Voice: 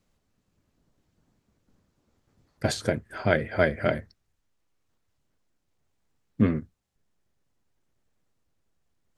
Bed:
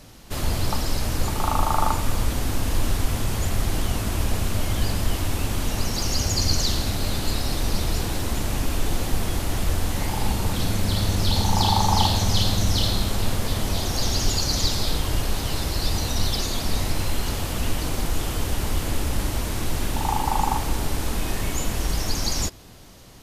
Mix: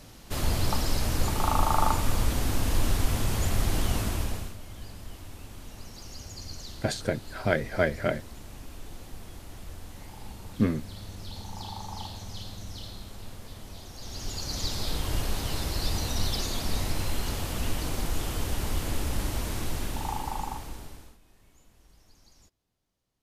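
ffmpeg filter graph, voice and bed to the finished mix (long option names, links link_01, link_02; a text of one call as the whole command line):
ffmpeg -i stem1.wav -i stem2.wav -filter_complex "[0:a]adelay=4200,volume=-2.5dB[link_01];[1:a]volume=11.5dB,afade=type=out:start_time=3.99:duration=0.57:silence=0.149624,afade=type=in:start_time=13.99:duration=1.17:silence=0.199526,afade=type=out:start_time=19.52:duration=1.66:silence=0.0334965[link_02];[link_01][link_02]amix=inputs=2:normalize=0" out.wav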